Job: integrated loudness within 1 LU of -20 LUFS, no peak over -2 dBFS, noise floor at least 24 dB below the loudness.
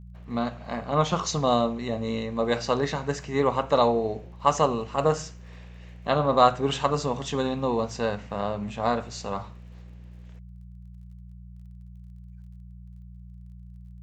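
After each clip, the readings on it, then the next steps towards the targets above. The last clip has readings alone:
ticks 25/s; hum 60 Hz; harmonics up to 180 Hz; hum level -41 dBFS; loudness -26.0 LUFS; peak -4.5 dBFS; loudness target -20.0 LUFS
-> de-click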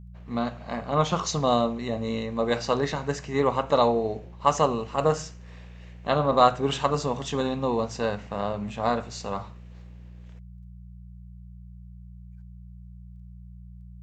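ticks 0.071/s; hum 60 Hz; harmonics up to 180 Hz; hum level -42 dBFS
-> de-hum 60 Hz, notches 3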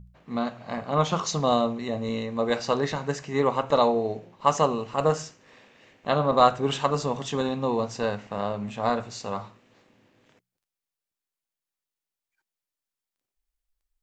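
hum none; loudness -26.0 LUFS; peak -5.0 dBFS; loudness target -20.0 LUFS
-> gain +6 dB; limiter -2 dBFS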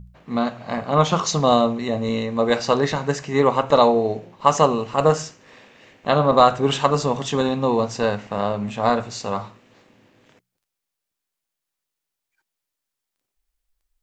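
loudness -20.5 LUFS; peak -2.0 dBFS; noise floor -83 dBFS

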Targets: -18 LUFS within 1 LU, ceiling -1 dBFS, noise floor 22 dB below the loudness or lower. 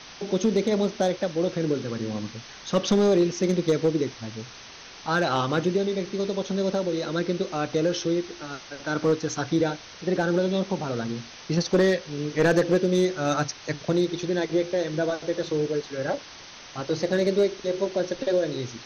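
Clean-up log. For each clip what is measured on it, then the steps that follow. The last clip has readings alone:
clipped 0.5%; flat tops at -14.0 dBFS; noise floor -44 dBFS; noise floor target -48 dBFS; loudness -25.5 LUFS; peak -14.0 dBFS; loudness target -18.0 LUFS
-> clip repair -14 dBFS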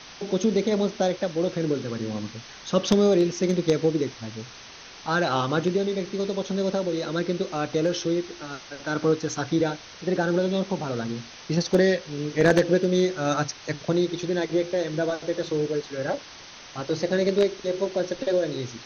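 clipped 0.0%; noise floor -44 dBFS; noise floor target -48 dBFS
-> denoiser 6 dB, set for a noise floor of -44 dBFS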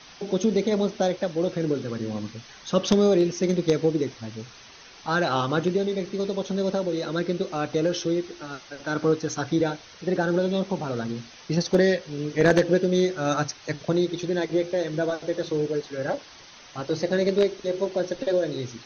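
noise floor -48 dBFS; loudness -25.5 LUFS; peak -5.0 dBFS; loudness target -18.0 LUFS
-> gain +7.5 dB; limiter -1 dBFS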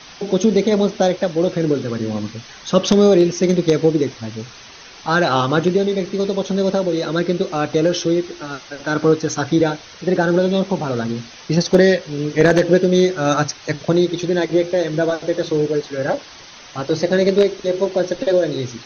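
loudness -18.0 LUFS; peak -1.0 dBFS; noise floor -40 dBFS

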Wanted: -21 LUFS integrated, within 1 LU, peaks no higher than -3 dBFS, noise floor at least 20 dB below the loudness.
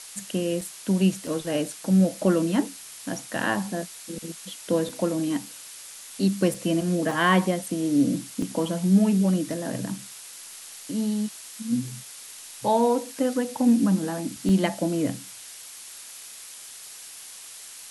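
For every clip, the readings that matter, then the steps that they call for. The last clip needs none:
dropouts 7; longest dropout 3.3 ms; noise floor -43 dBFS; noise floor target -45 dBFS; loudness -25.0 LUFS; peak -9.0 dBFS; loudness target -21.0 LUFS
-> interpolate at 0.61/1.27/4.89/6.54/7.11/8.42/14.49, 3.3 ms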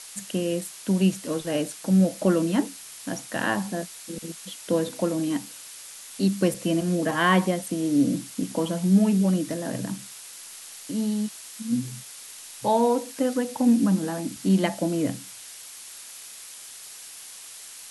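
dropouts 0; noise floor -43 dBFS; noise floor target -45 dBFS
-> noise print and reduce 6 dB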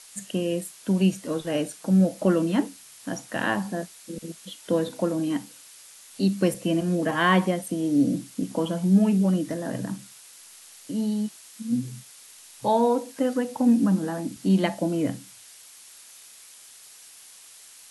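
noise floor -49 dBFS; loudness -25.0 LUFS; peak -9.0 dBFS; loudness target -21.0 LUFS
-> gain +4 dB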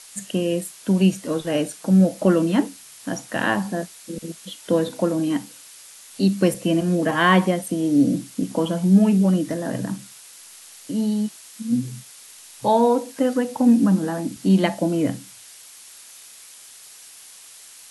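loudness -21.0 LUFS; peak -5.0 dBFS; noise floor -45 dBFS

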